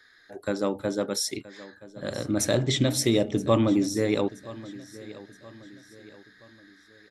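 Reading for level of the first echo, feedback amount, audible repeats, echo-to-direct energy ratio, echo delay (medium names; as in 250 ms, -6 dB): -18.5 dB, 43%, 3, -17.5 dB, 974 ms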